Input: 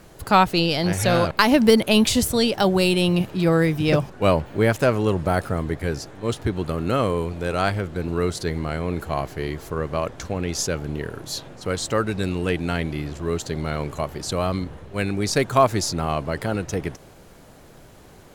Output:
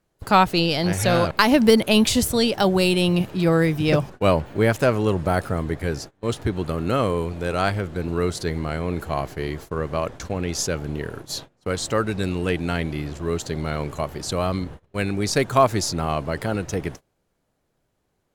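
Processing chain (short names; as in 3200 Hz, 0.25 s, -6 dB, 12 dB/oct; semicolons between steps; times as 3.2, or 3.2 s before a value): gate -35 dBFS, range -25 dB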